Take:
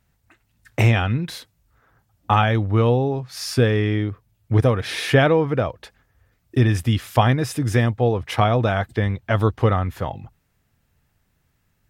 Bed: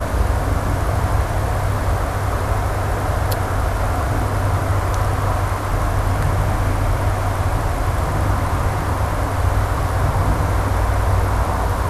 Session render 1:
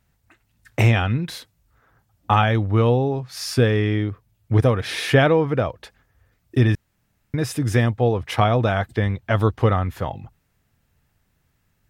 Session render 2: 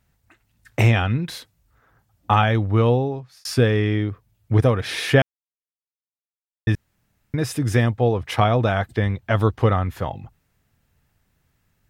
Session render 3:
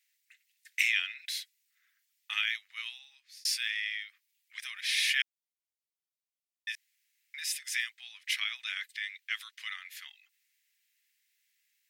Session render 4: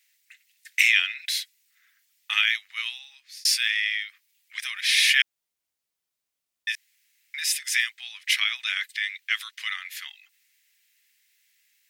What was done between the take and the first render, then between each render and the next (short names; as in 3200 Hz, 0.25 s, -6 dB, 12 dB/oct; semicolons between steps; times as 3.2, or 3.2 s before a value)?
6.75–7.34 room tone
2.94–3.45 fade out; 5.22–6.67 mute
elliptic high-pass 2000 Hz, stop band 80 dB
gain +9 dB; limiter -3 dBFS, peak gain reduction 1.5 dB